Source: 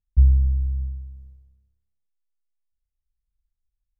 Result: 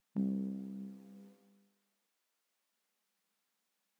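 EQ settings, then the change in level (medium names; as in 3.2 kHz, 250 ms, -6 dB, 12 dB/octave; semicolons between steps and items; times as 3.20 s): brick-wall FIR high-pass 180 Hz; tilt EQ -2 dB/octave; peaking EQ 240 Hz -9 dB 2.5 oct; +18.0 dB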